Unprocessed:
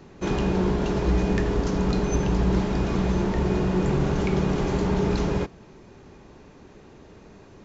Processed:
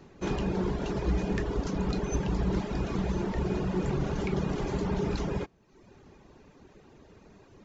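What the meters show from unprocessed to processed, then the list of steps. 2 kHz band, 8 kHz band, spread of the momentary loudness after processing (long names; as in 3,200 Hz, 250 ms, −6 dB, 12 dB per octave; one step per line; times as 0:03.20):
−6.5 dB, can't be measured, 2 LU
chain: reverb reduction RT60 0.75 s
level −4.5 dB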